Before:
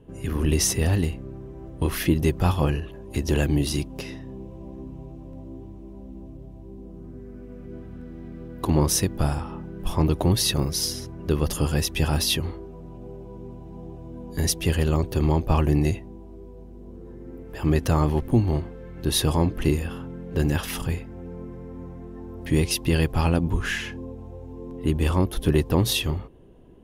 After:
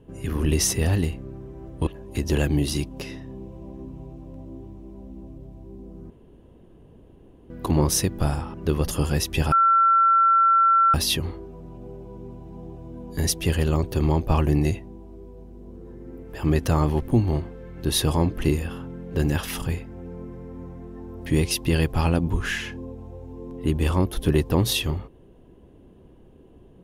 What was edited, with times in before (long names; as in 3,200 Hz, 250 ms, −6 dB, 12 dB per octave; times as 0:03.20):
0:01.87–0:02.86: remove
0:07.09–0:08.49: fill with room tone
0:09.53–0:11.16: remove
0:12.14: insert tone 1,350 Hz −14 dBFS 1.42 s